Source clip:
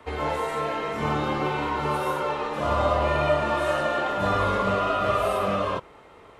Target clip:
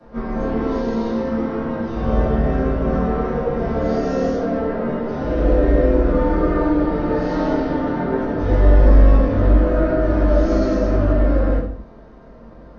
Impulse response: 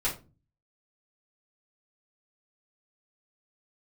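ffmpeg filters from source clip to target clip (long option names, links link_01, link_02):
-filter_complex "[0:a]equalizer=frequency=100:width_type=o:width=0.57:gain=13[link_01];[1:a]atrim=start_sample=2205,afade=type=out:start_time=0.19:duration=0.01,atrim=end_sample=8820[link_02];[link_01][link_02]afir=irnorm=-1:irlink=0,asetrate=22050,aresample=44100,volume=-1.5dB"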